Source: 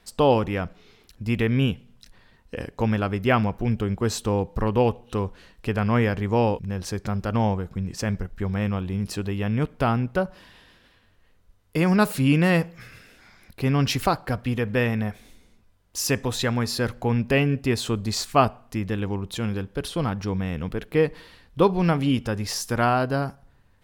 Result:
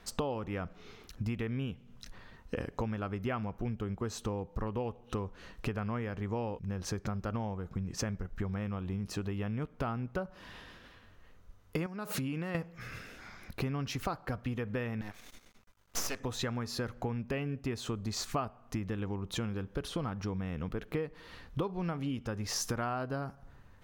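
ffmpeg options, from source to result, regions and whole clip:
-filter_complex "[0:a]asettb=1/sr,asplit=3[s0][s1][s2];[s0]atrim=end=11.864[s3];[s1]atrim=start=11.86:end=12.55,asetpts=PTS-STARTPTS,afade=t=in:d=0.004:c=qsin,afade=t=out:st=0.686:d=0.004:c=qsin,highpass=f=140:p=1,acompressor=threshold=0.0398:ratio=10:attack=3.2:release=140:knee=1:detection=peak[s4];[s2]atrim=start=12.546[s5];[s3][s4]acrossfade=d=0.004:c1=hsin:c2=qsin[s6];[s6][s5]acrossfade=d=0.004:c1=qsin:c2=hsin,asettb=1/sr,asplit=3[s7][s8][s9];[s7]atrim=end=15.014[s10];[s8]atrim=start=15.01:end=16.2,asetpts=PTS-STARTPTS,afade=t=in:d=0.004:c=qsin,afade=t=out:st=1.186:d=0.004:c=qsin,tiltshelf=f=730:g=-5.5,aeval=exprs='max(val(0),0)':c=same[s11];[s9]atrim=start=16.196[s12];[s10][s11]acrossfade=d=0.004:c1=hsin:c2=qsin[s13];[s13][s12]acrossfade=d=0.004:c1=qsin:c2=hsin,highshelf=f=4200:g=-8.5,acompressor=threshold=0.0178:ratio=10,equalizer=f=1250:t=o:w=0.33:g=4,equalizer=f=6300:t=o:w=0.33:g=6,equalizer=f=16000:t=o:w=0.33:g=7,volume=1.41"

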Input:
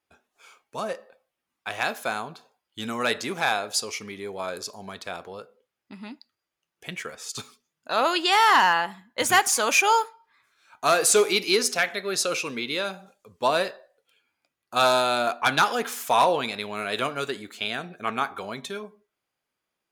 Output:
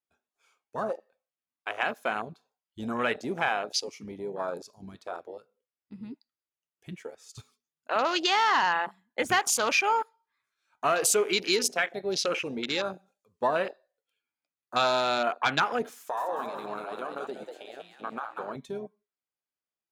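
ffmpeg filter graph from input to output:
-filter_complex "[0:a]asettb=1/sr,asplit=3[s0][s1][s2];[s0]atrim=end=15.984[s3];[s1]atrim=start=15.98:end=18.56,asetpts=PTS-STARTPTS,afade=t=in:d=0.004:c=qsin,afade=t=out:st=2.576:d=0.004:c=qsin,equalizer=f=110:w=0.51:g=-7.5,acompressor=threshold=0.0398:ratio=6:attack=3.2:release=140:knee=1:detection=peak,asplit=7[s4][s5][s6][s7][s8][s9][s10];[s5]adelay=191,afreqshift=91,volume=0.596[s11];[s6]adelay=382,afreqshift=182,volume=0.299[s12];[s7]adelay=573,afreqshift=273,volume=0.15[s13];[s8]adelay=764,afreqshift=364,volume=0.0741[s14];[s9]adelay=955,afreqshift=455,volume=0.0372[s15];[s10]adelay=1146,afreqshift=546,volume=0.0186[s16];[s4][s11][s12][s13][s14][s15][s16]amix=inputs=7:normalize=0,atrim=end_sample=113778[s17];[s2]atrim=start=18.556[s18];[s3][s17]acrossfade=d=0.004:c1=hsin:c2=qsin[s19];[s19][s18]acrossfade=d=0.004:c1=qsin:c2=hsin,afwtdn=0.0316,equalizer=f=6100:t=o:w=0.77:g=2,acompressor=threshold=0.0708:ratio=2.5"

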